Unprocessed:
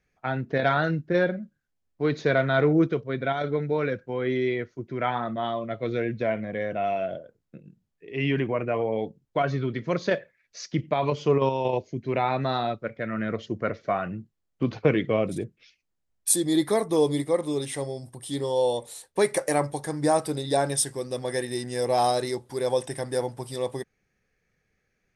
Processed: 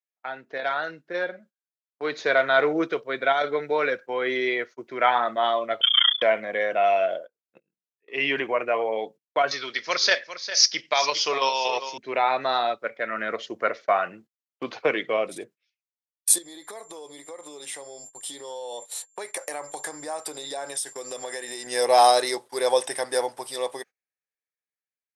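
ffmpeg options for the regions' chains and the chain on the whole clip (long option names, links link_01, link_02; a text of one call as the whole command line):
ffmpeg -i in.wav -filter_complex "[0:a]asettb=1/sr,asplit=3[link_01][link_02][link_03];[link_01]atrim=end=5.814[link_04];[link_02]atrim=start=5.81:end=6.22,asetpts=PTS-STARTPTS,afade=type=in:duration=0.004:curve=qsin,afade=type=out:start_time=0.406:duration=0.004:curve=qsin,aecho=1:1:5.9:0.93,atrim=end_sample=18081,lowpass=frequency=3100:width_type=q:width=0.5098,lowpass=frequency=3100:width_type=q:width=0.6013,lowpass=frequency=3100:width_type=q:width=0.9,lowpass=frequency=3100:width_type=q:width=2.563,afreqshift=-3600,tremolo=f=29:d=0.974[link_05];[link_03]atrim=start=6.216[link_06];[link_04][link_05]acrossfade=duration=0.004:curve1=hsin:curve2=qsin[link_07];[link_07][link_06]acrossfade=duration=0.004:curve1=qsin:curve2=hsin,asettb=1/sr,asplit=3[link_08][link_09][link_10];[link_08]atrim=end=9.514[link_11];[link_09]atrim=start=9.51:end=11.98,asetpts=PTS-STARTPTS,afade=type=in:duration=0.004:curve=qsin,afade=type=out:start_time=2.466:duration=0.004:curve=qsin,lowpass=frequency=5300:width_type=q:width=5.2,tiltshelf=frequency=860:gain=-7,aecho=1:1:403:0.251,atrim=end_sample=108927[link_12];[link_10]atrim=start=11.976[link_13];[link_11][link_12]acrossfade=duration=0.004:curve1=hsin:curve2=qsin[link_14];[link_14][link_13]acrossfade=duration=0.004:curve1=qsin:curve2=hsin,asettb=1/sr,asplit=3[link_15][link_16][link_17];[link_15]atrim=end=16.384[link_18];[link_16]atrim=start=16.38:end=21.67,asetpts=PTS-STARTPTS,afade=type=in:duration=0.004:curve=qsin,afade=type=out:start_time=5.286:duration=0.004:curve=qsin,aeval=exprs='val(0)+0.00562*sin(2*PI*7300*n/s)':channel_layout=same,acompressor=threshold=-33dB:ratio=20:attack=3.2:release=140:knee=1:detection=peak[link_19];[link_17]atrim=start=21.666[link_20];[link_18][link_19]acrossfade=duration=0.004:curve1=hsin:curve2=qsin[link_21];[link_21][link_20]acrossfade=duration=0.004:curve1=qsin:curve2=hsin,agate=range=-24dB:threshold=-41dB:ratio=16:detection=peak,highpass=620,dynaudnorm=framelen=480:gausssize=9:maxgain=13dB,volume=-2.5dB" out.wav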